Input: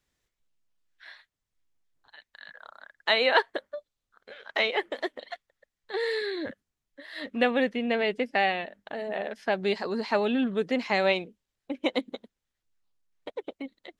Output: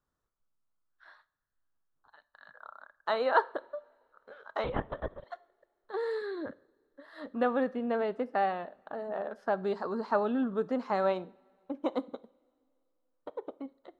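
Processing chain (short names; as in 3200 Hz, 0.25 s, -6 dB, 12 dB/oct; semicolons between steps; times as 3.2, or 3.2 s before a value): resonant high shelf 1700 Hz -9.5 dB, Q 3; two-slope reverb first 0.48 s, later 2.6 s, from -21 dB, DRR 16.5 dB; 4.64–5.24 LPC vocoder at 8 kHz whisper; gain -4.5 dB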